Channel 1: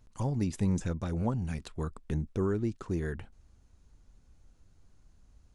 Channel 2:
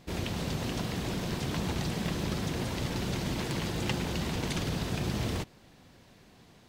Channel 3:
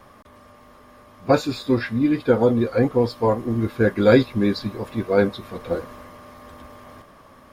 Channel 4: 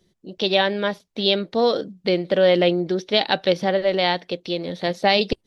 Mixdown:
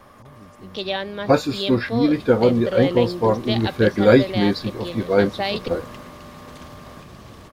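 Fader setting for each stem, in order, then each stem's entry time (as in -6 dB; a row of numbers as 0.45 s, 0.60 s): -16.5 dB, -11.5 dB, +1.0 dB, -7.0 dB; 0.00 s, 2.05 s, 0.00 s, 0.35 s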